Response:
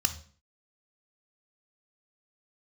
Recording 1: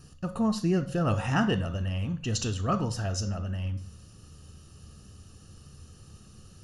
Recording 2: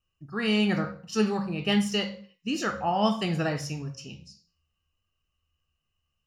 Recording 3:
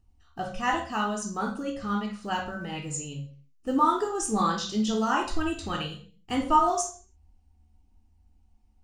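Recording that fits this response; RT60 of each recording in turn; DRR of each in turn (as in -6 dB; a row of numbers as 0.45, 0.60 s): 1; 0.45, 0.45, 0.45 s; 9.0, 5.0, -0.5 dB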